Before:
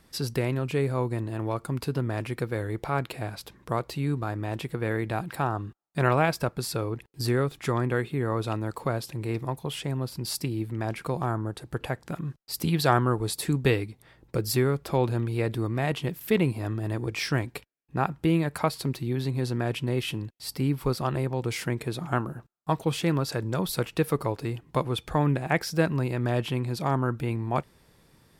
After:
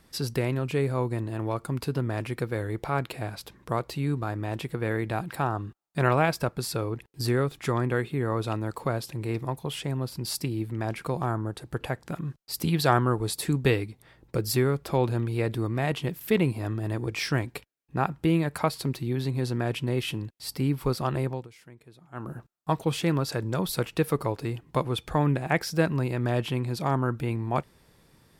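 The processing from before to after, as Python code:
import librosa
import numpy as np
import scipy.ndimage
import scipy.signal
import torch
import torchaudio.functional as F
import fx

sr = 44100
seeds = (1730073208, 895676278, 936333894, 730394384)

y = fx.edit(x, sr, fx.fade_down_up(start_s=21.28, length_s=1.05, db=-21.0, fade_s=0.2), tone=tone)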